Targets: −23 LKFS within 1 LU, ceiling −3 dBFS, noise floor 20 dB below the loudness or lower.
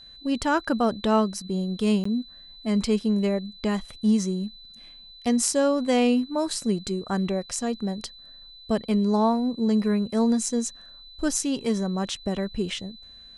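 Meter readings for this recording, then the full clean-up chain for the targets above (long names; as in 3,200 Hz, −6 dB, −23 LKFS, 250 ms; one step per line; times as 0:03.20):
number of dropouts 1; longest dropout 14 ms; interfering tone 4,000 Hz; level of the tone −45 dBFS; integrated loudness −25.5 LKFS; sample peak −6.0 dBFS; target loudness −23.0 LKFS
→ repair the gap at 0:02.04, 14 ms
notch filter 4,000 Hz, Q 30
level +2.5 dB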